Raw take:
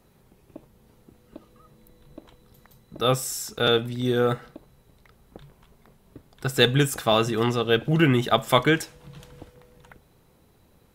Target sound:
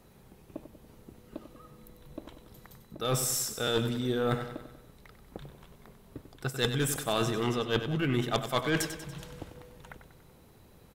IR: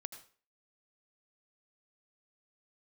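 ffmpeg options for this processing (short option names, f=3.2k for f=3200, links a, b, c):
-af "areverse,acompressor=threshold=-27dB:ratio=12,areverse,aeval=exprs='0.188*(cos(1*acos(clip(val(0)/0.188,-1,1)))-cos(1*PI/2))+0.0841*(cos(4*acos(clip(val(0)/0.188,-1,1)))-cos(4*PI/2))+0.0075*(cos(5*acos(clip(val(0)/0.188,-1,1)))-cos(5*PI/2))+0.0376*(cos(6*acos(clip(val(0)/0.188,-1,1)))-cos(6*PI/2))':c=same,aecho=1:1:95|190|285|380|475|570:0.316|0.168|0.0888|0.0471|0.025|0.0132"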